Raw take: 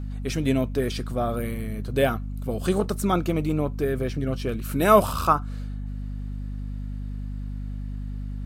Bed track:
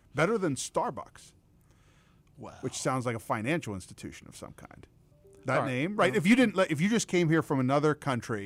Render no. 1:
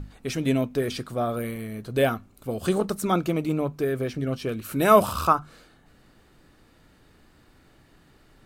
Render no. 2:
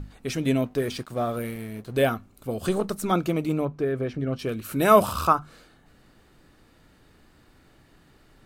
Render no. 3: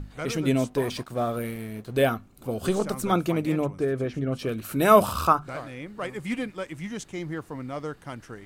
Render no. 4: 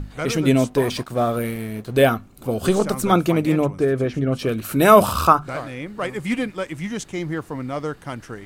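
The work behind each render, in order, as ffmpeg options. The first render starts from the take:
-af "bandreject=f=50:t=h:w=6,bandreject=f=100:t=h:w=6,bandreject=f=150:t=h:w=6,bandreject=f=200:t=h:w=6,bandreject=f=250:t=h:w=6"
-filter_complex "[0:a]asettb=1/sr,asplit=3[a][b][c];[a]atrim=end=0.654[d];[b]atrim=start=0.65:end=2.01,asetpts=PTS-STARTPTS,afade=t=in:d=0.004:c=qsin,afade=t=out:st=1.356:d=0.004:c=qsin,aeval=exprs='sgn(val(0))*max(abs(val(0))-0.00376,0)':c=same[e];[c]atrim=start=2.006[f];[d][e]acrossfade=d=0.004:c1=hsin:c2=qsin[g];[g][f]acrossfade=d=0.004:c1=qsin:c2=hsin,asettb=1/sr,asplit=3[h][i][j];[h]atrim=end=2.684[k];[i]atrim=start=2.68:end=3.11,asetpts=PTS-STARTPTS,afade=t=in:d=0.004:c=qsin,afade=t=out:st=0.426:d=0.004:c=qsin,aeval=exprs='if(lt(val(0),0),0.708*val(0),val(0))':c=same[l];[j]atrim=start=3.106[m];[k][l]acrossfade=d=0.004:c1=hsin:c2=qsin[n];[n][m]acrossfade=d=0.004:c1=qsin:c2=hsin,asettb=1/sr,asplit=3[o][p][q];[o]atrim=end=3.654[r];[p]atrim=start=3.65:end=4.39,asetpts=PTS-STARTPTS,afade=t=in:d=0.004:c=qsin,afade=t=out:st=0.736:d=0.004:c=qsin,aemphasis=mode=reproduction:type=75kf[s];[q]atrim=start=4.386[t];[r][s]acrossfade=d=0.004:c1=hsin:c2=qsin[u];[u][t]acrossfade=d=0.004:c1=qsin:c2=hsin"
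-filter_complex "[1:a]volume=-8dB[a];[0:a][a]amix=inputs=2:normalize=0"
-af "volume=6.5dB,alimiter=limit=-1dB:level=0:latency=1"

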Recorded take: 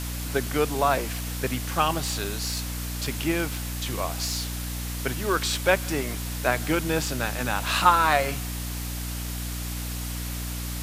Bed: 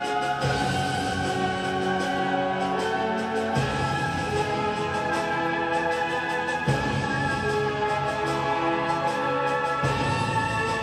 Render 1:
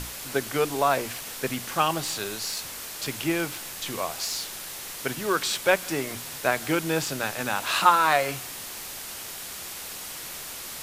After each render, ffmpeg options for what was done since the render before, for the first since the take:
-af "bandreject=f=60:t=h:w=6,bandreject=f=120:t=h:w=6,bandreject=f=180:t=h:w=6,bandreject=f=240:t=h:w=6,bandreject=f=300:t=h:w=6"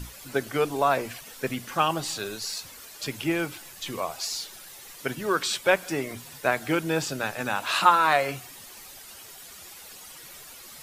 -af "afftdn=nr=11:nf=-38"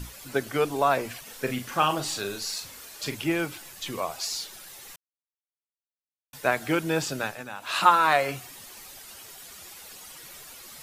-filter_complex "[0:a]asettb=1/sr,asplit=3[a][b][c];[a]atrim=end=1.244[d];[b]atrim=start=1.24:end=3.15,asetpts=PTS-STARTPTS,afade=t=in:d=0.004:c=qsin,afade=t=out:st=1.906:d=0.004:c=qsin,asplit=2[e][f];[f]adelay=40,volume=-8dB[g];[e][g]amix=inputs=2:normalize=0,atrim=end_sample=84231[h];[c]atrim=start=3.146[i];[d][h]acrossfade=d=0.004:c1=hsin:c2=qsin[j];[j][i]acrossfade=d=0.004:c1=qsin:c2=hsin,asplit=5[k][l][m][n][o];[k]atrim=end=4.96,asetpts=PTS-STARTPTS,afade=t=out:st=4.956:d=0.004:c=hsin[p];[l]atrim=start=4.96:end=6.33,asetpts=PTS-STARTPTS,volume=0[q];[m]atrim=start=6.33:end=7.45,asetpts=PTS-STARTPTS,afade=t=in:d=0.004:c=hsin,afade=t=out:st=0.88:d=0.24:silence=0.298538[r];[n]atrim=start=7.45:end=7.6,asetpts=PTS-STARTPTS,volume=-10.5dB[s];[o]atrim=start=7.6,asetpts=PTS-STARTPTS,afade=t=in:d=0.24:silence=0.298538[t];[p][q][r][s][t]concat=n=5:v=0:a=1"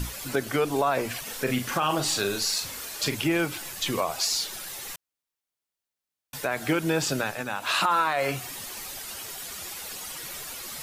-filter_complex "[0:a]asplit=2[a][b];[b]acompressor=threshold=-32dB:ratio=6,volume=2.5dB[c];[a][c]amix=inputs=2:normalize=0,alimiter=limit=-14dB:level=0:latency=1:release=50"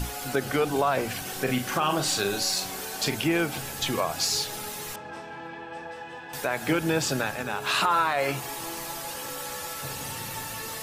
-filter_complex "[1:a]volume=-14dB[a];[0:a][a]amix=inputs=2:normalize=0"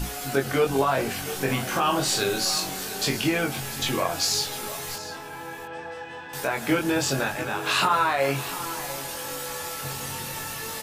-filter_complex "[0:a]asplit=2[a][b];[b]adelay=22,volume=-3dB[c];[a][c]amix=inputs=2:normalize=0,aecho=1:1:695:0.188"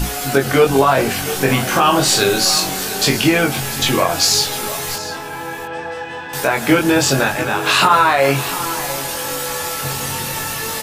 -af "volume=10dB,alimiter=limit=-2dB:level=0:latency=1"

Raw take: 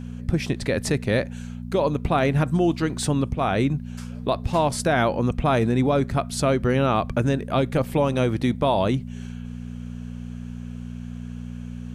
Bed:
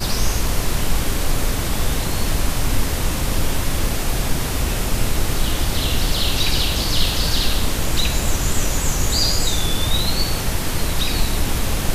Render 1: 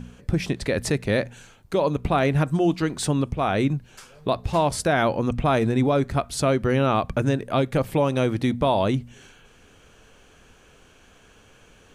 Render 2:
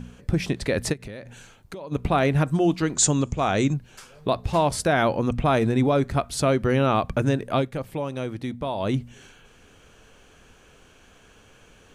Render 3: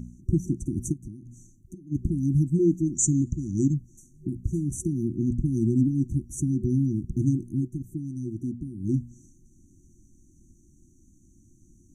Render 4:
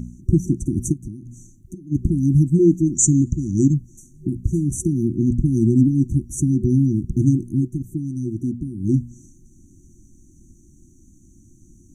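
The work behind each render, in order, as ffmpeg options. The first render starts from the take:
-af "bandreject=f=60:t=h:w=4,bandreject=f=120:t=h:w=4,bandreject=f=180:t=h:w=4,bandreject=f=240:t=h:w=4"
-filter_complex "[0:a]asplit=3[a][b][c];[a]afade=t=out:st=0.92:d=0.02[d];[b]acompressor=threshold=-33dB:ratio=12:attack=3.2:release=140:knee=1:detection=peak,afade=t=in:st=0.92:d=0.02,afade=t=out:st=1.91:d=0.02[e];[c]afade=t=in:st=1.91:d=0.02[f];[d][e][f]amix=inputs=3:normalize=0,asettb=1/sr,asplit=3[g][h][i];[g]atrim=end=2.954[j];[h]atrim=start=2.95:end=3.74,asetpts=PTS-STARTPTS,afade=t=in:d=0.004:c=qsin,afade=t=out:st=0.786:d=0.004:c=qsin,lowpass=f=7k:t=q:w=11[k];[i]atrim=start=3.736[l];[j][k]acrossfade=d=0.004:c1=hsin:c2=qsin[m];[m][l]acrossfade=d=0.004:c1=qsin:c2=hsin,asplit=3[n][o][p];[n]atrim=end=7.73,asetpts=PTS-STARTPTS,afade=t=out:st=7.55:d=0.18:silence=0.398107[q];[o]atrim=start=7.73:end=8.78,asetpts=PTS-STARTPTS,volume=-8dB[r];[p]atrim=start=8.78,asetpts=PTS-STARTPTS,afade=t=in:d=0.18:silence=0.398107[s];[q][r][s]concat=n=3:v=0:a=1"
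-af "afftfilt=real='re*(1-between(b*sr/4096,370,5800))':imag='im*(1-between(b*sr/4096,370,5800))':win_size=4096:overlap=0.75,highshelf=f=9.2k:g=-10"
-af "volume=7dB"

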